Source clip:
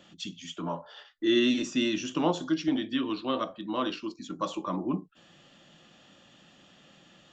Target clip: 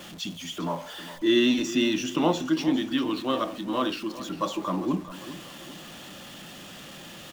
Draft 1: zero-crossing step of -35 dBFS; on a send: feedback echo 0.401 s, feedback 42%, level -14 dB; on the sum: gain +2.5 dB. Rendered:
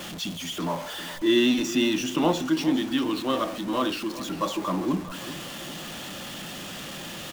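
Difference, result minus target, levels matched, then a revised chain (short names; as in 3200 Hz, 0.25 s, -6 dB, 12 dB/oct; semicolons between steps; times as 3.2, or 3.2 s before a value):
zero-crossing step: distortion +7 dB
zero-crossing step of -42.5 dBFS; on a send: feedback echo 0.401 s, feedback 42%, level -14 dB; on the sum: gain +2.5 dB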